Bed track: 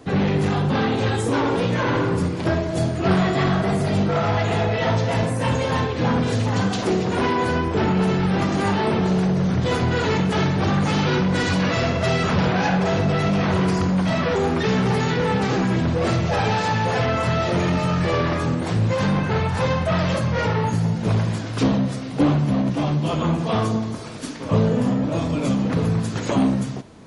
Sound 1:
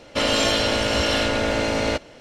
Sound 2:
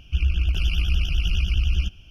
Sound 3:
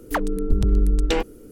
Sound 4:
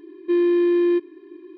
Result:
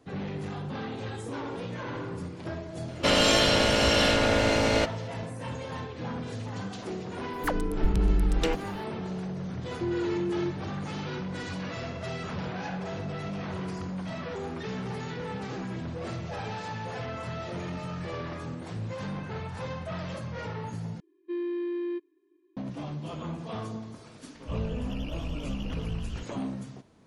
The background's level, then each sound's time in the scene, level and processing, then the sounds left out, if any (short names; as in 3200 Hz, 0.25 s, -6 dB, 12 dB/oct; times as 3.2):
bed track -15 dB
2.88 add 1 -1.5 dB
7.33 add 3 -5.5 dB
9.52 add 4 -12 dB + LPF 1100 Hz
21 replace with 4 -13.5 dB + upward expander, over -39 dBFS
24.35 add 2 -15 dB